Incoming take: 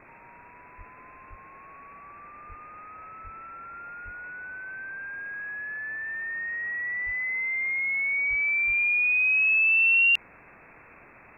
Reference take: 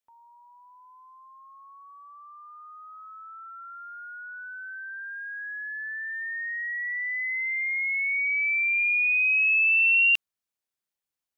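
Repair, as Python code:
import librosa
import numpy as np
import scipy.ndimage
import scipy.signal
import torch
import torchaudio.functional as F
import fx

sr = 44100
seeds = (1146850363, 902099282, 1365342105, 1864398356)

y = fx.fix_deplosive(x, sr, at_s=(0.77, 1.29, 2.48, 3.23, 4.04, 7.05, 8.29, 8.66))
y = fx.noise_reduce(y, sr, print_start_s=10.18, print_end_s=10.68, reduce_db=30.0)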